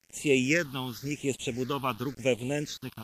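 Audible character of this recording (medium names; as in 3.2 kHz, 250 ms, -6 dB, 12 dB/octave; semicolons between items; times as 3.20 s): a quantiser's noise floor 8-bit, dither none; phasing stages 6, 0.93 Hz, lowest notch 510–1500 Hz; WMA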